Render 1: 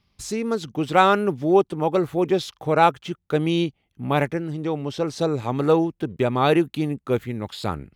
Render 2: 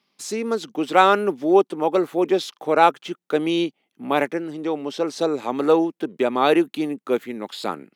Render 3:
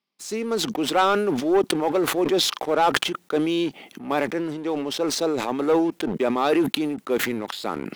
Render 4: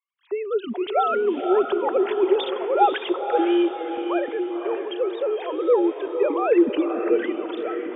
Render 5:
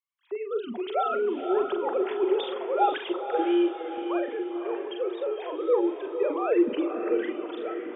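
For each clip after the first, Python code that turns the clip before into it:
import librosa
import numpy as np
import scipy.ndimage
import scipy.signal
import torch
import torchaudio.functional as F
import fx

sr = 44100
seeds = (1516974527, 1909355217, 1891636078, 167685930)

y1 = scipy.signal.sosfilt(scipy.signal.butter(4, 230.0, 'highpass', fs=sr, output='sos'), x)
y1 = y1 * 10.0 ** (1.5 / 20.0)
y2 = fx.leveller(y1, sr, passes=2)
y2 = fx.sustainer(y2, sr, db_per_s=37.0)
y2 = y2 * 10.0 ** (-9.5 / 20.0)
y3 = fx.sine_speech(y2, sr)
y3 = fx.echo_diffused(y3, sr, ms=532, feedback_pct=46, wet_db=-6.5)
y4 = fx.doubler(y3, sr, ms=43.0, db=-7.0)
y4 = y4 * 10.0 ** (-6.0 / 20.0)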